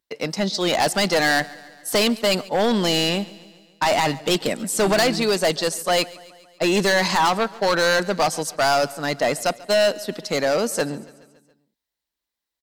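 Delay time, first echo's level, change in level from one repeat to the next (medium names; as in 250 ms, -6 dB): 140 ms, -21.0 dB, -4.5 dB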